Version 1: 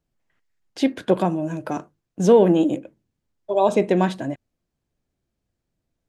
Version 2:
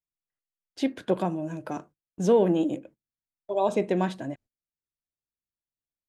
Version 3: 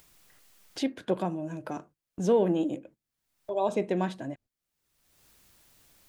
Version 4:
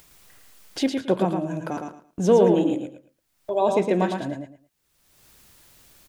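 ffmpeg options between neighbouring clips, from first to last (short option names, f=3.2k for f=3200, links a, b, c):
-af "agate=range=-20dB:threshold=-43dB:ratio=16:detection=peak,volume=-6.5dB"
-af "acompressor=mode=upward:threshold=-29dB:ratio=2.5,volume=-3dB"
-af "aecho=1:1:111|222|333:0.562|0.124|0.0272,volume=6dB"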